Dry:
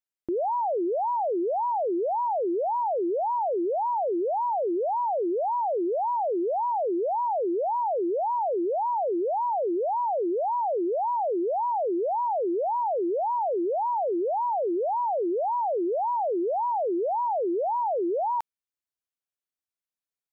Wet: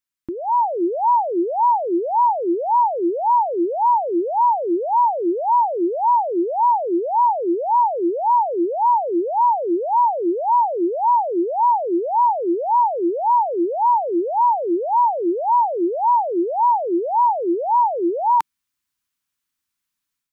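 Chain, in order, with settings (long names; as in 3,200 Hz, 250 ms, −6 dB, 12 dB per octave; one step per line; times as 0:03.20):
flat-topped bell 540 Hz −11 dB 1.3 octaves
automatic gain control gain up to 8 dB
dynamic equaliser 190 Hz, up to +3 dB, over −40 dBFS, Q 1.2
level +5 dB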